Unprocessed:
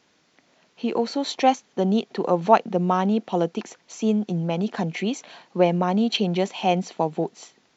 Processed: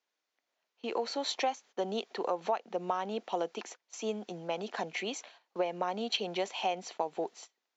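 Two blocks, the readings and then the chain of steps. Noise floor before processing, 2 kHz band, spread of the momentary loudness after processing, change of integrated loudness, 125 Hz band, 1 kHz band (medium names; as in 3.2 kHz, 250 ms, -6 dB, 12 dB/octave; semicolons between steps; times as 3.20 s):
-64 dBFS, -7.0 dB, 7 LU, -12.0 dB, -23.0 dB, -11.0 dB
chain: gate -41 dBFS, range -18 dB; high-pass 490 Hz 12 dB/octave; compression 10:1, threshold -23 dBFS, peak gain reduction 13.5 dB; trim -4 dB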